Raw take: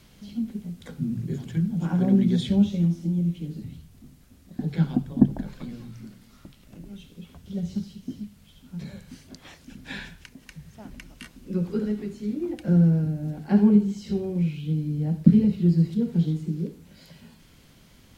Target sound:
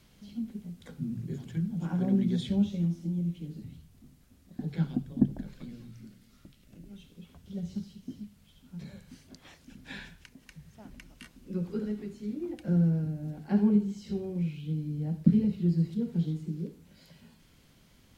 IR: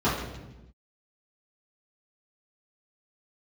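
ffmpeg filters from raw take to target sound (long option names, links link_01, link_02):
-filter_complex "[0:a]asettb=1/sr,asplit=3[link_01][link_02][link_03];[link_01]atrim=end=4.874[link_04];[link_02]atrim=start=4.87:end=6.91,asetpts=PTS-STARTPTS,afade=type=in:duration=0.004:curve=qsin,afade=type=out:start_time=2.036:duration=0.004:curve=qsin,equalizer=frequency=920:width_type=o:width=1:gain=-6.5[link_05];[link_03]atrim=start=6.906[link_06];[link_04][link_05]acrossfade=duration=0.004:curve1=hsin:curve2=qsin[link_07];[link_07][link_06]acrossfade=duration=0.004:curve1=qsin:curve2=hsin,volume=-6.5dB"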